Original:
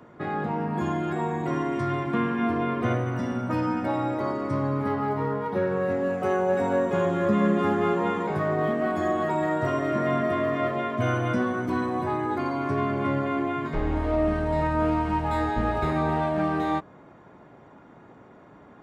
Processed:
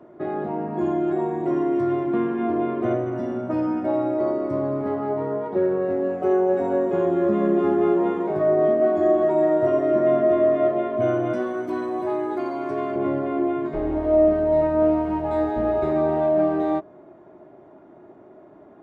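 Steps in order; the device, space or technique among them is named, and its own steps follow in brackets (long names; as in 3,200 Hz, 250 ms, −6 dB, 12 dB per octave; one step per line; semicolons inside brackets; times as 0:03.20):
inside a helmet (high-shelf EQ 4,500 Hz −6.5 dB; hollow resonant body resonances 360/620 Hz, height 16 dB, ringing for 35 ms)
0:11.33–0:12.96: spectral tilt +2.5 dB per octave
level −6.5 dB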